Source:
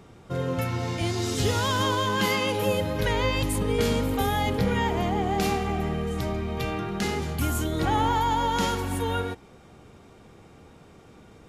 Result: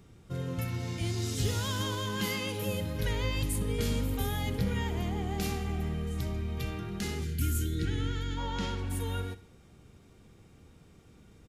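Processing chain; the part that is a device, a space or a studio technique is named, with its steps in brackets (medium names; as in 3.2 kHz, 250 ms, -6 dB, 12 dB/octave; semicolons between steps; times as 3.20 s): 7.24–8.38 s: time-frequency box 480–1300 Hz -19 dB; smiley-face EQ (bass shelf 130 Hz +6.5 dB; peaking EQ 790 Hz -7 dB 1.8 oct; treble shelf 8.2 kHz +6 dB); 7.74–8.89 s: low-pass 8.1 kHz -> 3.7 kHz 12 dB/octave; feedback delay 63 ms, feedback 45%, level -16 dB; trim -7 dB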